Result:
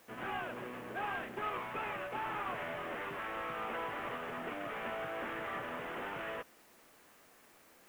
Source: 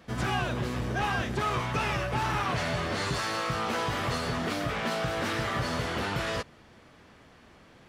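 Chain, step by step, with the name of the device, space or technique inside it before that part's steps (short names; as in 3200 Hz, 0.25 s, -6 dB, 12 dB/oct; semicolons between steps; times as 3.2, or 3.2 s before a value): army field radio (BPF 310–2900 Hz; CVSD 16 kbps; white noise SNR 25 dB); gain -7.5 dB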